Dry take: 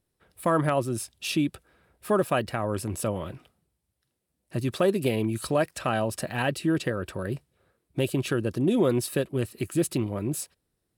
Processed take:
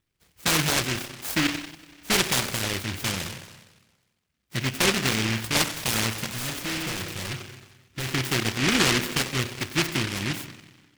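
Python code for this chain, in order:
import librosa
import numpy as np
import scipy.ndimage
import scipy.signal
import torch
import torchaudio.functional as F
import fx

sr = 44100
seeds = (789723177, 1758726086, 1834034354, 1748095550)

y = fx.high_shelf(x, sr, hz=12000.0, db=-12.0)
y = fx.rev_spring(y, sr, rt60_s=1.3, pass_ms=(31, 45), chirp_ms=50, drr_db=7.5)
y = fx.clip_hard(y, sr, threshold_db=-28.0, at=(6.32, 8.06))
y = fx.noise_mod_delay(y, sr, seeds[0], noise_hz=2200.0, depth_ms=0.49)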